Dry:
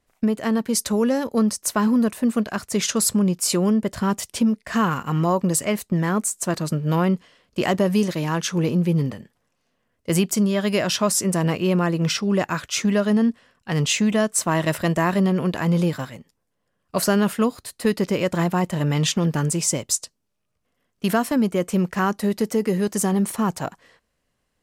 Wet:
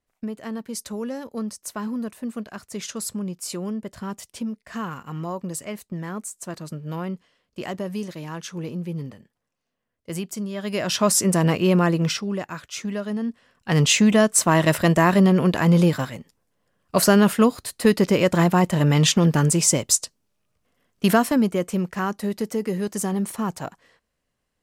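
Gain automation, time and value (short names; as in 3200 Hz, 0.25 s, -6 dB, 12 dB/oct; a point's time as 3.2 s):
10.5 s -10 dB
11.08 s +2 dB
11.92 s +2 dB
12.43 s -8.5 dB
13.22 s -8.5 dB
13.72 s +3.5 dB
21.11 s +3.5 dB
21.85 s -4 dB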